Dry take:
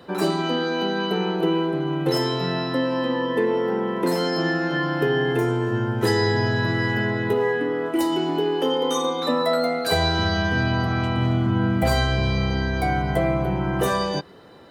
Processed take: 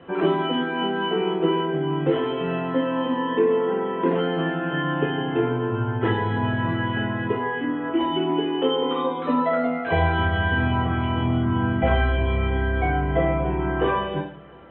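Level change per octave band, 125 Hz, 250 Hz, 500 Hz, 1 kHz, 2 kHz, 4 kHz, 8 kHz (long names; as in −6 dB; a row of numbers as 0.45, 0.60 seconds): −1.0 dB, −0.5 dB, −1.0 dB, +1.0 dB, −1.0 dB, −4.5 dB, below −40 dB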